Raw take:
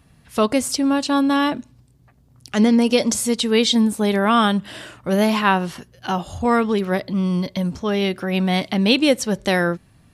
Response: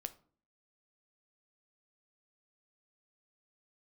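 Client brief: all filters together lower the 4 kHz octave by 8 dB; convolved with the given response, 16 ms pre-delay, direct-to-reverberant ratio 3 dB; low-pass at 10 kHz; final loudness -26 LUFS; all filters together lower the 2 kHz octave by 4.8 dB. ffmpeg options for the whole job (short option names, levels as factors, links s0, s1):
-filter_complex "[0:a]lowpass=10000,equalizer=f=2000:t=o:g=-4,equalizer=f=4000:t=o:g=-9,asplit=2[s0][s1];[1:a]atrim=start_sample=2205,adelay=16[s2];[s1][s2]afir=irnorm=-1:irlink=0,volume=1[s3];[s0][s3]amix=inputs=2:normalize=0,volume=0.422"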